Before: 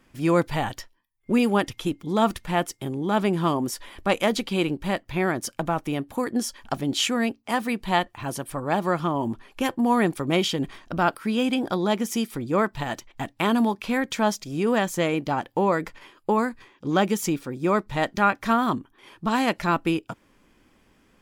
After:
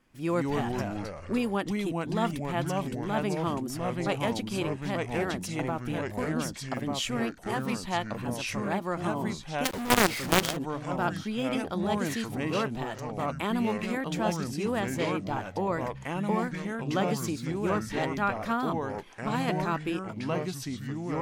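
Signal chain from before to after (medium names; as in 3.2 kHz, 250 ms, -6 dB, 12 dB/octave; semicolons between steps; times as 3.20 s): ever faster or slower copies 117 ms, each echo -3 st, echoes 3; 9.64–10.57 s: companded quantiser 2-bit; wow and flutter 27 cents; trim -8 dB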